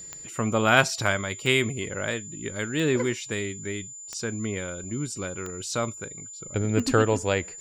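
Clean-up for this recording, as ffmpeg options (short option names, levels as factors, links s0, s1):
-af "adeclick=t=4,bandreject=f=7100:w=30"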